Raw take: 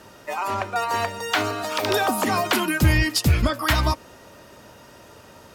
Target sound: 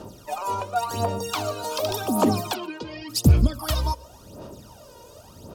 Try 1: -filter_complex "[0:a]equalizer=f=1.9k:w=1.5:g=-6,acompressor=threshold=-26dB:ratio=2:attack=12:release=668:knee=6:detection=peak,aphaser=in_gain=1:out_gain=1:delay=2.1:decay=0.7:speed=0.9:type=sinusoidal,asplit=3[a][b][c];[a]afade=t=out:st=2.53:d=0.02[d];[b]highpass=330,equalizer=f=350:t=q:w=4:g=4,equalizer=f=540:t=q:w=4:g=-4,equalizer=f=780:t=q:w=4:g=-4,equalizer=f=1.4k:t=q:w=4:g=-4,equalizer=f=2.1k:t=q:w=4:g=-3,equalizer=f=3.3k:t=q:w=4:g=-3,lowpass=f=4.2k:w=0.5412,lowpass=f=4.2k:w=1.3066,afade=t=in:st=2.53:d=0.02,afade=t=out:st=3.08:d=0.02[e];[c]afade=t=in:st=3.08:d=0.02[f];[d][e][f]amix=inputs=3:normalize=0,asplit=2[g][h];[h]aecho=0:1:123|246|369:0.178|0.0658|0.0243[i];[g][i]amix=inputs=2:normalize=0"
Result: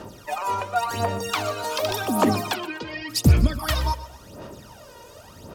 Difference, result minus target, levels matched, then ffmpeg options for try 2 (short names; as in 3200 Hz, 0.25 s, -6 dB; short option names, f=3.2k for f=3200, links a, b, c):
echo-to-direct +9.5 dB; 2000 Hz band +6.0 dB
-filter_complex "[0:a]equalizer=f=1.9k:w=1.5:g=-17,acompressor=threshold=-26dB:ratio=2:attack=12:release=668:knee=6:detection=peak,aphaser=in_gain=1:out_gain=1:delay=2.1:decay=0.7:speed=0.9:type=sinusoidal,asplit=3[a][b][c];[a]afade=t=out:st=2.53:d=0.02[d];[b]highpass=330,equalizer=f=350:t=q:w=4:g=4,equalizer=f=540:t=q:w=4:g=-4,equalizer=f=780:t=q:w=4:g=-4,equalizer=f=1.4k:t=q:w=4:g=-4,equalizer=f=2.1k:t=q:w=4:g=-3,equalizer=f=3.3k:t=q:w=4:g=-3,lowpass=f=4.2k:w=0.5412,lowpass=f=4.2k:w=1.3066,afade=t=in:st=2.53:d=0.02,afade=t=out:st=3.08:d=0.02[e];[c]afade=t=in:st=3.08:d=0.02[f];[d][e][f]amix=inputs=3:normalize=0,asplit=2[g][h];[h]aecho=0:1:123|246:0.0596|0.022[i];[g][i]amix=inputs=2:normalize=0"